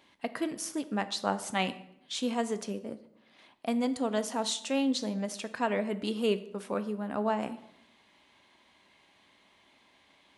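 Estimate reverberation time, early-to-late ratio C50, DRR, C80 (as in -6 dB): 0.75 s, 14.5 dB, 11.0 dB, 17.5 dB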